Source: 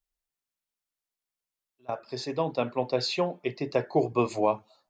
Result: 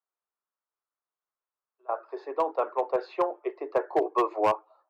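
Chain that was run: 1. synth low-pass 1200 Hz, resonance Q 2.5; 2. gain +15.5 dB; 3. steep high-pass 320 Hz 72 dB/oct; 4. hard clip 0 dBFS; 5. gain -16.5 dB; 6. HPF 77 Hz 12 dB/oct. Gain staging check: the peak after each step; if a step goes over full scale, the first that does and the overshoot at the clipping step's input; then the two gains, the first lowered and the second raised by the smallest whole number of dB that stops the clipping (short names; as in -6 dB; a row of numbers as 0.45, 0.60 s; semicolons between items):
-7.5, +8.0, +6.5, 0.0, -16.5, -15.0 dBFS; step 2, 6.5 dB; step 2 +8.5 dB, step 5 -9.5 dB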